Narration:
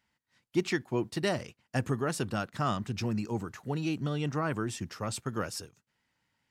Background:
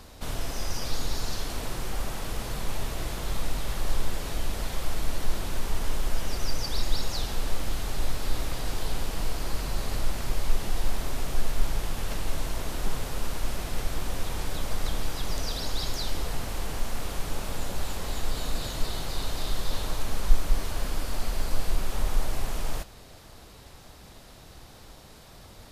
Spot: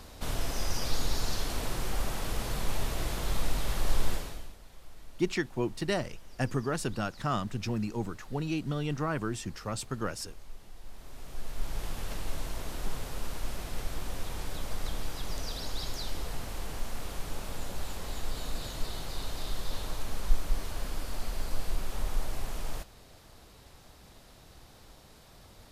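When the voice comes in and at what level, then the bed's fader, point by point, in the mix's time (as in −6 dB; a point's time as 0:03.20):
4.65 s, −0.5 dB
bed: 0:04.13 −0.5 dB
0:04.59 −21.5 dB
0:10.79 −21.5 dB
0:11.84 −5.5 dB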